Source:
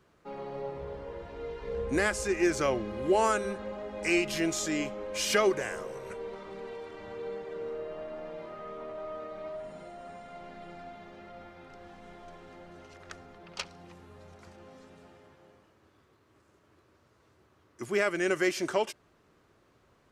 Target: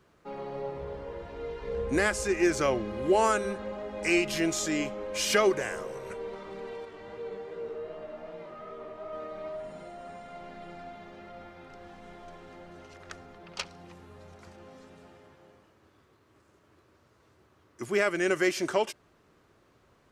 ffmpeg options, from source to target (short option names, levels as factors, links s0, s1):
-filter_complex "[0:a]asettb=1/sr,asplit=3[s0][s1][s2];[s0]atrim=end=6.854[s3];[s1]atrim=start=6.85:end=9.13,asetpts=PTS-STARTPTS,afade=t=in:d=0.004:c=qsin,afade=t=out:st=2.276:d=0.004:c=qsin,flanger=delay=17:depth=4.7:speed=2.6[s4];[s2]atrim=start=9.126[s5];[s3][s4]acrossfade=d=0.004:c1=hsin:c2=qsin[s6];[s6][s5]acrossfade=d=0.004:c1=qsin:c2=hsin,volume=1.19"